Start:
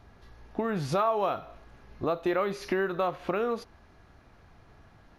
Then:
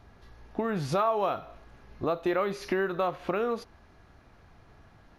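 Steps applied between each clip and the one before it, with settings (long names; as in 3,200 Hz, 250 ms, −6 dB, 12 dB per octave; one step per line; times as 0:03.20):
no processing that can be heard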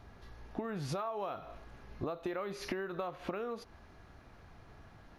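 downward compressor 12 to 1, threshold −34 dBFS, peak gain reduction 13 dB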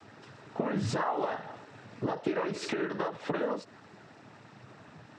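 cochlear-implant simulation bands 12
every ending faded ahead of time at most 210 dB per second
level +7 dB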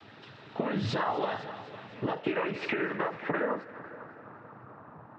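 echo machine with several playback heads 251 ms, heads first and second, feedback 49%, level −19 dB
low-pass filter sweep 3,600 Hz → 1,100 Hz, 0:01.62–0:04.94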